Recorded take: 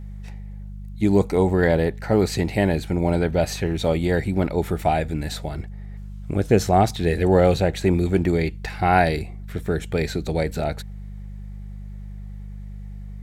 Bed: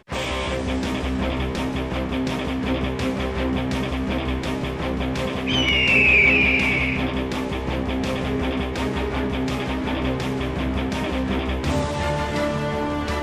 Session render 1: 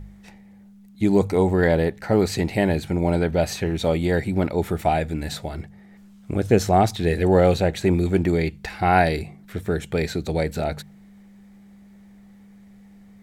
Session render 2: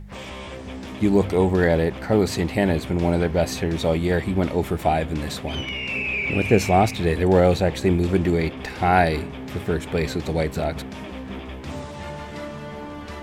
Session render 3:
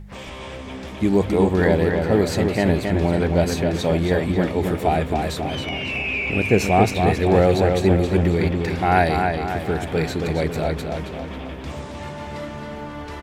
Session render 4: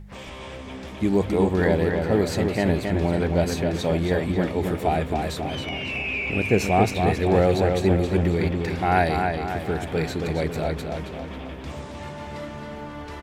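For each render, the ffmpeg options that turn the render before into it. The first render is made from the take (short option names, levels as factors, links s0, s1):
-af "bandreject=f=50:t=h:w=4,bandreject=f=100:t=h:w=4,bandreject=f=150:t=h:w=4"
-filter_complex "[1:a]volume=0.299[s0];[0:a][s0]amix=inputs=2:normalize=0"
-filter_complex "[0:a]asplit=2[s0][s1];[s1]adelay=272,lowpass=f=4400:p=1,volume=0.596,asplit=2[s2][s3];[s3]adelay=272,lowpass=f=4400:p=1,volume=0.53,asplit=2[s4][s5];[s5]adelay=272,lowpass=f=4400:p=1,volume=0.53,asplit=2[s6][s7];[s7]adelay=272,lowpass=f=4400:p=1,volume=0.53,asplit=2[s8][s9];[s9]adelay=272,lowpass=f=4400:p=1,volume=0.53,asplit=2[s10][s11];[s11]adelay=272,lowpass=f=4400:p=1,volume=0.53,asplit=2[s12][s13];[s13]adelay=272,lowpass=f=4400:p=1,volume=0.53[s14];[s0][s2][s4][s6][s8][s10][s12][s14]amix=inputs=8:normalize=0"
-af "volume=0.708"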